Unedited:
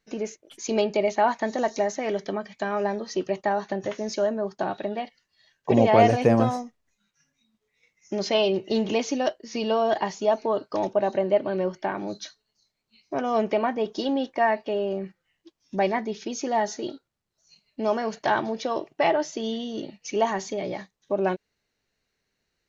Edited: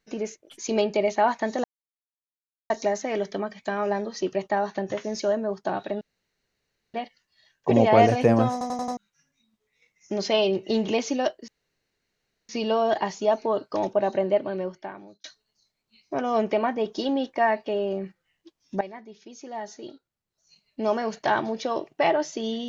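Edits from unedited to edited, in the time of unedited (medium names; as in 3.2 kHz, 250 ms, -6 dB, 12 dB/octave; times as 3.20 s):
1.64 s: insert silence 1.06 s
4.95 s: insert room tone 0.93 s
6.53 s: stutter in place 0.09 s, 5 plays
9.49 s: insert room tone 1.01 s
11.25–12.24 s: fade out
15.81–17.80 s: fade in quadratic, from -15.5 dB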